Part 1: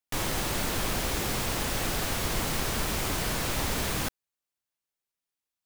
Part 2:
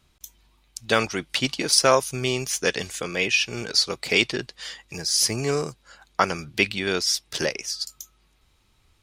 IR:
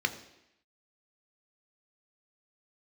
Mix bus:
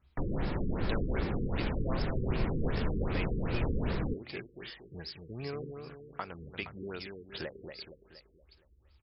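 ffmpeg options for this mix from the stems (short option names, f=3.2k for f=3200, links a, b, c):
-filter_complex "[0:a]acrossover=split=380[a][b];[b]acompressor=threshold=-42dB:ratio=6[c];[a][c]amix=inputs=2:normalize=0,adelay=50,volume=2.5dB,asplit=2[d][e];[e]volume=-16dB[f];[1:a]equalizer=f=66:t=o:w=0.73:g=14,acompressor=threshold=-26dB:ratio=6,volume=-9.5dB,asplit=2[g][h];[h]volume=-5.5dB[i];[2:a]atrim=start_sample=2205[j];[f][j]afir=irnorm=-1:irlink=0[k];[i]aecho=0:1:234|468|702|936|1170|1404|1638:1|0.48|0.23|0.111|0.0531|0.0255|0.0122[l];[d][g][k][l]amix=inputs=4:normalize=0,afftfilt=real='re*lt(b*sr/1024,480*pow(5500/480,0.5+0.5*sin(2*PI*2.6*pts/sr)))':imag='im*lt(b*sr/1024,480*pow(5500/480,0.5+0.5*sin(2*PI*2.6*pts/sr)))':win_size=1024:overlap=0.75"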